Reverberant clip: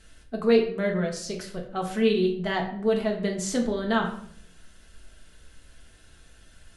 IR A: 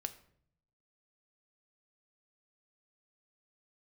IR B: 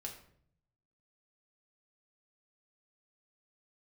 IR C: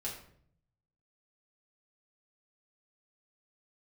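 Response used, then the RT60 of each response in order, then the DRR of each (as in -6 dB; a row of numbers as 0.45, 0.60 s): B; 0.60, 0.60, 0.60 s; 8.5, 0.0, -5.0 dB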